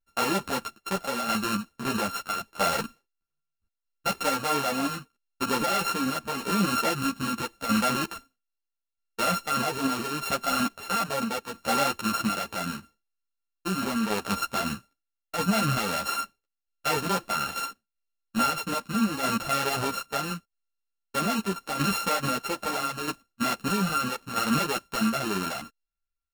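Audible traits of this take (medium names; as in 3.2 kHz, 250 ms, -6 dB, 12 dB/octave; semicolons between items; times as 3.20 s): a buzz of ramps at a fixed pitch in blocks of 32 samples; tremolo saw down 0.78 Hz, depth 55%; a shimmering, thickened sound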